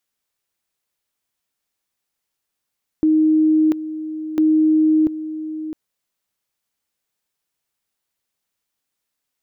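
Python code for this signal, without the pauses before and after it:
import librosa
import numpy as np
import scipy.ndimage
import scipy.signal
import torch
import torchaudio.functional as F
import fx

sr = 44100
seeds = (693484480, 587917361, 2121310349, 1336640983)

y = fx.two_level_tone(sr, hz=312.0, level_db=-11.5, drop_db=13.0, high_s=0.69, low_s=0.66, rounds=2)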